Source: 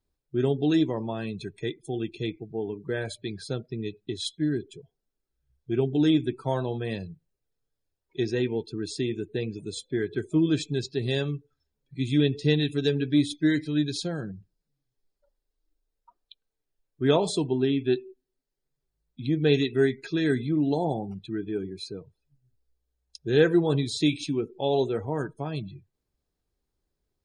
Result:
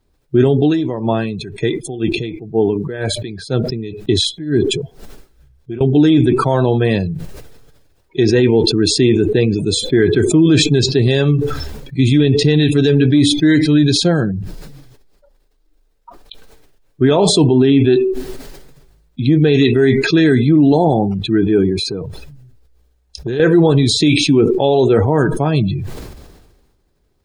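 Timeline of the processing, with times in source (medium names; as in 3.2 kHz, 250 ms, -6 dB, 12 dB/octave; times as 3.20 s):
0.60–5.81 s: logarithmic tremolo 2 Hz, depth 30 dB
21.79–23.40 s: compression, threshold -35 dBFS
whole clip: treble shelf 4.2 kHz -7 dB; loudness maximiser +19.5 dB; decay stretcher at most 40 dB/s; trim -2.5 dB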